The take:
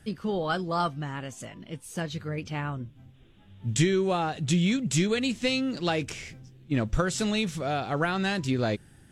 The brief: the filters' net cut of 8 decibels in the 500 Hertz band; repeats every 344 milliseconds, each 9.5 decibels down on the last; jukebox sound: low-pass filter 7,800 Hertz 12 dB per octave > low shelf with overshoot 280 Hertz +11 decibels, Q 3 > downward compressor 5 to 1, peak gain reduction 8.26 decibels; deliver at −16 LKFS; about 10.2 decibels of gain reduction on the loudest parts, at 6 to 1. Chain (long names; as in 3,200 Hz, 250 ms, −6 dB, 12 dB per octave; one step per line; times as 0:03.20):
parametric band 500 Hz −4.5 dB
downward compressor 6 to 1, threshold −30 dBFS
low-pass filter 7,800 Hz 12 dB per octave
low shelf with overshoot 280 Hz +11 dB, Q 3
repeating echo 344 ms, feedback 33%, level −9.5 dB
downward compressor 5 to 1, threshold −20 dBFS
level +9.5 dB